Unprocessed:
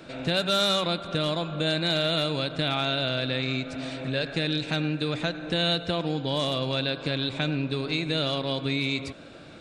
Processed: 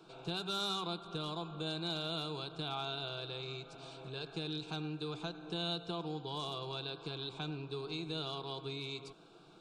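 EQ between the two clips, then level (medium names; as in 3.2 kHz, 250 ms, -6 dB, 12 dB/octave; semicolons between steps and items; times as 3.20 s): peaking EQ 67 Hz -12.5 dB 2.2 oct; treble shelf 5.5 kHz -7 dB; static phaser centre 380 Hz, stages 8; -7.0 dB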